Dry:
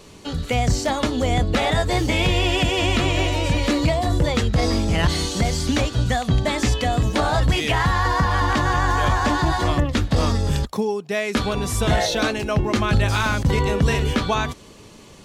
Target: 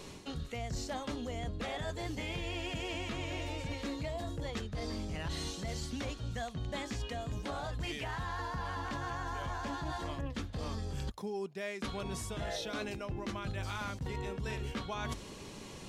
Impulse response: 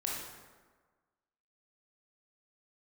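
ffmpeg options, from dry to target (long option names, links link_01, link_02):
-af "bandreject=frequency=50:width_type=h:width=6,bandreject=frequency=100:width_type=h:width=6,areverse,acompressor=threshold=-33dB:ratio=10,areverse,asetrate=42336,aresample=44100,volume=-2.5dB"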